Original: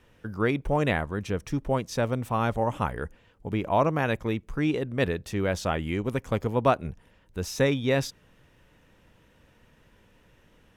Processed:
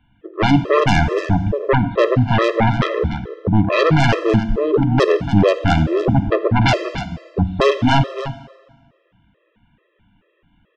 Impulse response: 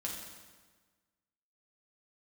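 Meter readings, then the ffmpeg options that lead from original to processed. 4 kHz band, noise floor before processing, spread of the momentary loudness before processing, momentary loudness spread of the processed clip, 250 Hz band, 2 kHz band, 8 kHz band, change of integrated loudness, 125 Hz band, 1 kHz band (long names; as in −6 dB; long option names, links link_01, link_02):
+12.5 dB, −61 dBFS, 10 LU, 9 LU, +11.0 dB, +10.5 dB, can't be measured, +10.5 dB, +12.5 dB, +10.0 dB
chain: -filter_complex "[0:a]afwtdn=0.02,equalizer=frequency=140:width_type=o:width=2.7:gain=3.5,aresample=8000,aresample=44100,aeval=exprs='0.473*sin(PI/2*5.01*val(0)/0.473)':channel_layout=same,aecho=1:1:294:0.266,asplit=2[link_01][link_02];[1:a]atrim=start_sample=2205[link_03];[link_02][link_03]afir=irnorm=-1:irlink=0,volume=-7dB[link_04];[link_01][link_04]amix=inputs=2:normalize=0,afftfilt=real='re*gt(sin(2*PI*2.3*pts/sr)*(1-2*mod(floor(b*sr/1024/340),2)),0)':imag='im*gt(sin(2*PI*2.3*pts/sr)*(1-2*mod(floor(b*sr/1024/340),2)),0)':win_size=1024:overlap=0.75,volume=-3dB"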